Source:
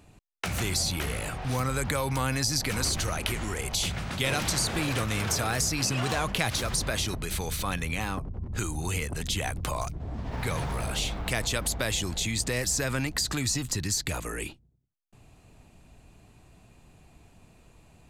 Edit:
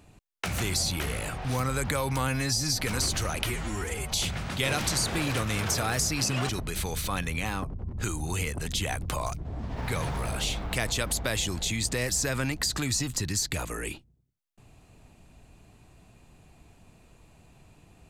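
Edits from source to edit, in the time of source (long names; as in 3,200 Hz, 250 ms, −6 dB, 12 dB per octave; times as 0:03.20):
0:02.28–0:02.62: time-stretch 1.5×
0:03.29–0:03.73: time-stretch 1.5×
0:06.10–0:07.04: remove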